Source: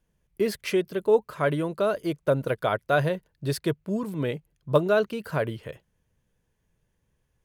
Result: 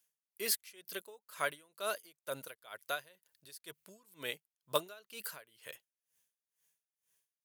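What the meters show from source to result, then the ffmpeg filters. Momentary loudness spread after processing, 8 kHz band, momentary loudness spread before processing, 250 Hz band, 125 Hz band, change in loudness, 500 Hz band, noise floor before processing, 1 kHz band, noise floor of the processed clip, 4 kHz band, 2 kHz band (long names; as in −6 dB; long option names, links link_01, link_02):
17 LU, +2.5 dB, 8 LU, −26.5 dB, −30.0 dB, −13.5 dB, −19.0 dB, −75 dBFS, −12.5 dB, below −85 dBFS, −3.5 dB, −10.0 dB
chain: -af "aderivative,aeval=exprs='val(0)*pow(10,-25*(0.5-0.5*cos(2*PI*2.1*n/s))/20)':channel_layout=same,volume=9dB"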